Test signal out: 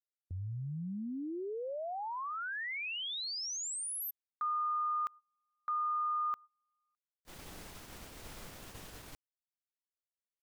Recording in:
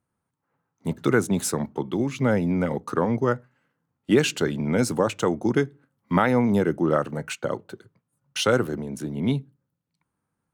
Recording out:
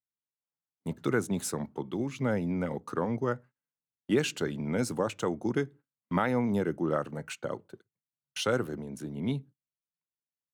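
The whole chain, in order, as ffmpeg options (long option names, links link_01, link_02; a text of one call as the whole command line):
ffmpeg -i in.wav -af "agate=range=-23dB:threshold=-41dB:ratio=16:detection=peak,volume=-7.5dB" out.wav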